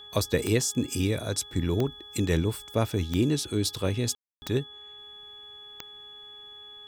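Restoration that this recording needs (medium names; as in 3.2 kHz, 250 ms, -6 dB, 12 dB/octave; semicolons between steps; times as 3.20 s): de-click; de-hum 415 Hz, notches 4; band-stop 3.4 kHz, Q 30; room tone fill 4.15–4.42 s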